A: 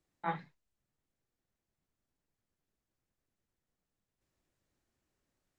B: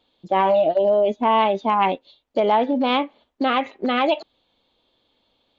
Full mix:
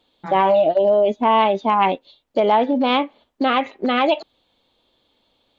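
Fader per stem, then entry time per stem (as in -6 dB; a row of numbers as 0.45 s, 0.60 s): +1.5 dB, +2.0 dB; 0.00 s, 0.00 s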